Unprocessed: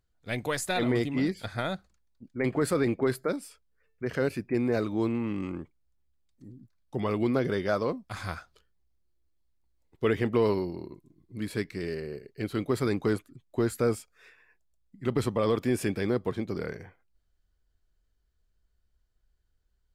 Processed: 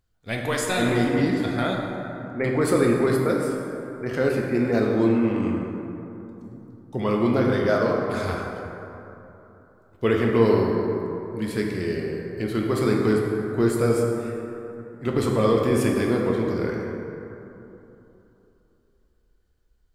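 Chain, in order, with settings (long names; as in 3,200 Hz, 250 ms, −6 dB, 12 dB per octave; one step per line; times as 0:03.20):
dense smooth reverb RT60 3.2 s, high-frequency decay 0.4×, DRR −1 dB
level +3 dB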